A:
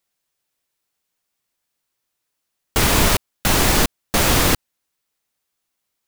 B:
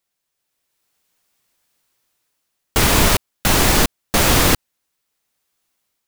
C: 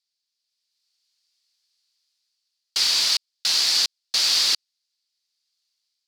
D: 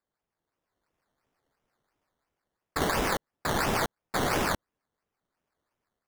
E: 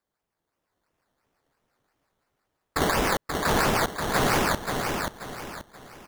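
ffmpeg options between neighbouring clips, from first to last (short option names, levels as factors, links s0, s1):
-af "dynaudnorm=f=300:g=5:m=3.16,volume=0.891"
-af "bandpass=f=4600:t=q:w=4.9:csg=0,volume=2.51"
-af "acrusher=samples=14:mix=1:aa=0.000001:lfo=1:lforange=8.4:lforate=2.9,volume=0.447"
-af "aecho=1:1:532|1064|1596|2128:0.562|0.197|0.0689|0.0241,volume=1.5"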